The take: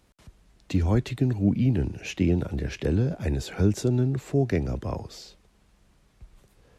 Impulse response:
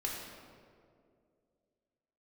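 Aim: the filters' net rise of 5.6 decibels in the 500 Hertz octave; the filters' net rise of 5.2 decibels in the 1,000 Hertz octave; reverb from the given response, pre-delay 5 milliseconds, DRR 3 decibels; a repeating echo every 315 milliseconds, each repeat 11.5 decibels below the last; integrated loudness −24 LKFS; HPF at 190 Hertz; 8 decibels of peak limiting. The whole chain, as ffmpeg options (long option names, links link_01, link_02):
-filter_complex "[0:a]highpass=190,equalizer=frequency=500:width_type=o:gain=7,equalizer=frequency=1000:width_type=o:gain=4,alimiter=limit=-17dB:level=0:latency=1,aecho=1:1:315|630|945:0.266|0.0718|0.0194,asplit=2[link_01][link_02];[1:a]atrim=start_sample=2205,adelay=5[link_03];[link_02][link_03]afir=irnorm=-1:irlink=0,volume=-6dB[link_04];[link_01][link_04]amix=inputs=2:normalize=0,volume=2.5dB"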